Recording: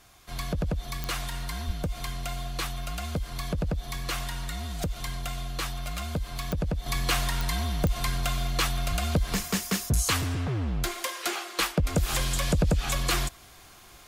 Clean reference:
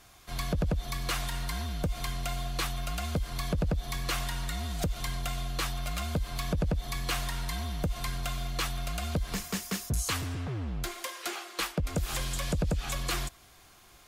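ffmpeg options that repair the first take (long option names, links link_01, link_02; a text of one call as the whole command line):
ffmpeg -i in.wav -filter_complex "[0:a]adeclick=threshold=4,asplit=3[link_01][link_02][link_03];[link_01]afade=type=out:start_time=1.66:duration=0.02[link_04];[link_02]highpass=frequency=140:width=0.5412,highpass=frequency=140:width=1.3066,afade=type=in:start_time=1.66:duration=0.02,afade=type=out:start_time=1.78:duration=0.02[link_05];[link_03]afade=type=in:start_time=1.78:duration=0.02[link_06];[link_04][link_05][link_06]amix=inputs=3:normalize=0,asplit=3[link_07][link_08][link_09];[link_07]afade=type=out:start_time=8.89:duration=0.02[link_10];[link_08]highpass=frequency=140:width=0.5412,highpass=frequency=140:width=1.3066,afade=type=in:start_time=8.89:duration=0.02,afade=type=out:start_time=9.01:duration=0.02[link_11];[link_09]afade=type=in:start_time=9.01:duration=0.02[link_12];[link_10][link_11][link_12]amix=inputs=3:normalize=0,asetnsamples=nb_out_samples=441:pad=0,asendcmd='6.86 volume volume -5.5dB',volume=0dB" out.wav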